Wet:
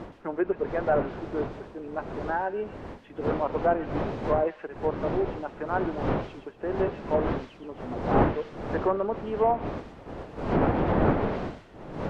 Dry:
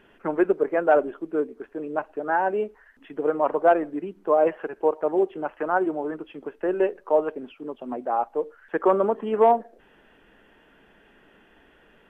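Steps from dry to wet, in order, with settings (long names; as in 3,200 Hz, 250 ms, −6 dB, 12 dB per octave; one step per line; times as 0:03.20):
wind on the microphone 560 Hz −25 dBFS
delay with a high-pass on its return 121 ms, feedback 36%, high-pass 2,600 Hz, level −4 dB
treble cut that deepens with the level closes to 2,200 Hz, closed at −13.5 dBFS
level −6 dB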